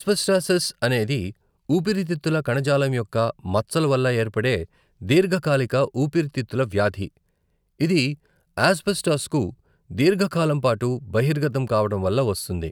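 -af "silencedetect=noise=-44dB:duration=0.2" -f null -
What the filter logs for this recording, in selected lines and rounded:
silence_start: 1.32
silence_end: 1.69 | silence_duration: 0.37
silence_start: 4.65
silence_end: 5.01 | silence_duration: 0.36
silence_start: 7.17
silence_end: 7.80 | silence_duration: 0.63
silence_start: 8.15
silence_end: 8.57 | silence_duration: 0.42
silence_start: 9.54
silence_end: 9.90 | silence_duration: 0.36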